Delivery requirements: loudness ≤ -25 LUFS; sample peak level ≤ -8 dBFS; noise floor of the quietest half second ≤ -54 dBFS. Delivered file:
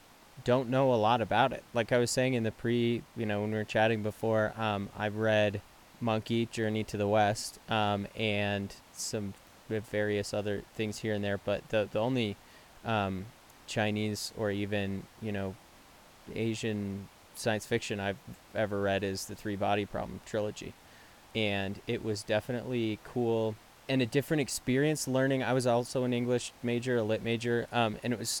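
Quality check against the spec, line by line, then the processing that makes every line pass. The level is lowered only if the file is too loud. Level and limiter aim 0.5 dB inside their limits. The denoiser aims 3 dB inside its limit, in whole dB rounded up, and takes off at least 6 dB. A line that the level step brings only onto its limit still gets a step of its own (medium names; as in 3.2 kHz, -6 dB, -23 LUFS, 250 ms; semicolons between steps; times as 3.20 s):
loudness -32.0 LUFS: pass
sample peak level -13.0 dBFS: pass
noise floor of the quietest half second -56 dBFS: pass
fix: none needed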